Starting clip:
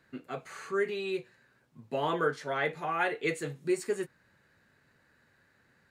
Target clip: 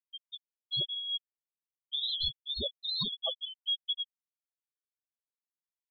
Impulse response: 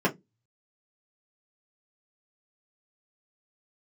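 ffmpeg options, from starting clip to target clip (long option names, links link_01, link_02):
-af "afftfilt=real='real(if(lt(b,272),68*(eq(floor(b/68),0)*1+eq(floor(b/68),1)*3+eq(floor(b/68),2)*0+eq(floor(b/68),3)*2)+mod(b,68),b),0)':imag='imag(if(lt(b,272),68*(eq(floor(b/68),0)*1+eq(floor(b/68),1)*3+eq(floor(b/68),2)*0+eq(floor(b/68),3)*2)+mod(b,68),b),0)':win_size=2048:overlap=0.75,bandreject=frequency=54.78:width_type=h:width=4,bandreject=frequency=109.56:width_type=h:width=4,bandreject=frequency=164.34:width_type=h:width=4,bandreject=frequency=219.12:width_type=h:width=4,bandreject=frequency=273.9:width_type=h:width=4,bandreject=frequency=328.68:width_type=h:width=4,bandreject=frequency=383.46:width_type=h:width=4,bandreject=frequency=438.24:width_type=h:width=4,bandreject=frequency=493.02:width_type=h:width=4,afftfilt=real='re*gte(hypot(re,im),0.112)':imag='im*gte(hypot(re,im),0.112)':win_size=1024:overlap=0.75,acompressor=threshold=-31dB:ratio=2"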